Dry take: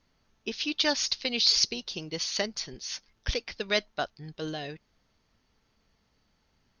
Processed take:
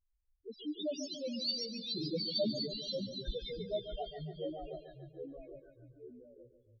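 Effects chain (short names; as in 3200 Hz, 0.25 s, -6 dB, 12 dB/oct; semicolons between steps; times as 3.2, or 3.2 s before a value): 1.89–2.68 sample leveller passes 3; loudest bins only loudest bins 1; echoes that change speed 0.246 s, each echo -2 st, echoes 3, each echo -6 dB; feedback echo 0.142 s, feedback 54%, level -10.5 dB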